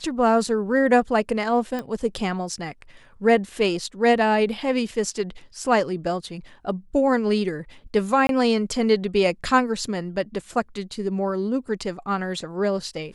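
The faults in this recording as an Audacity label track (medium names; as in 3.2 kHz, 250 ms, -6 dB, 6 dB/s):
1.790000	1.790000	pop -17 dBFS
8.270000	8.290000	dropout 22 ms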